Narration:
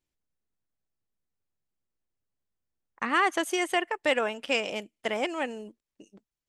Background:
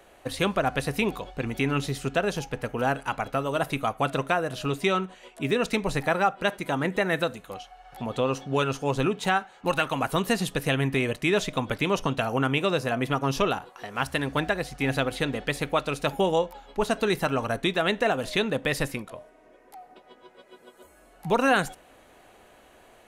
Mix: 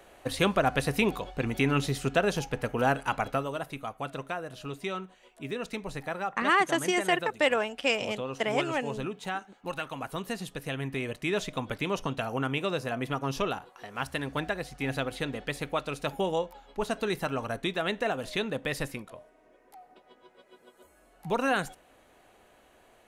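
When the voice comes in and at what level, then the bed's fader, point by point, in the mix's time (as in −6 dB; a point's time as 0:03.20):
3.35 s, +0.5 dB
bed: 0:03.30 0 dB
0:03.64 −10 dB
0:10.62 −10 dB
0:11.38 −5.5 dB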